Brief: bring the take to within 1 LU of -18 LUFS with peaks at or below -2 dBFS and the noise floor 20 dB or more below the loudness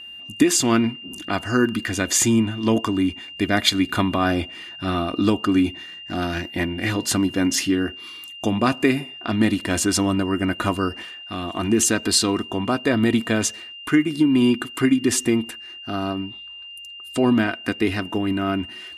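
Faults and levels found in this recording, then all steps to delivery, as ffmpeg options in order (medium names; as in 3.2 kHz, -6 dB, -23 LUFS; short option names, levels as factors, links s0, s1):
steady tone 2.8 kHz; tone level -36 dBFS; loudness -21.5 LUFS; peak level -3.5 dBFS; loudness target -18.0 LUFS
-> -af "bandreject=f=2800:w=30"
-af "volume=1.5,alimiter=limit=0.794:level=0:latency=1"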